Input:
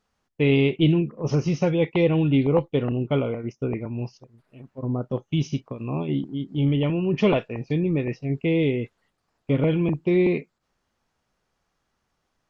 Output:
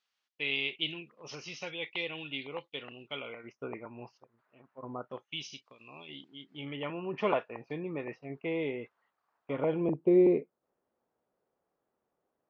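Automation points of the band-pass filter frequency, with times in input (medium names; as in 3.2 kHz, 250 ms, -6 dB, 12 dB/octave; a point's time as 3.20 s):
band-pass filter, Q 1.4
3.15 s 3.4 kHz
3.60 s 1.2 kHz
4.99 s 1.2 kHz
5.51 s 4.1 kHz
6.04 s 4.1 kHz
7.03 s 1.1 kHz
9.54 s 1.1 kHz
9.94 s 470 Hz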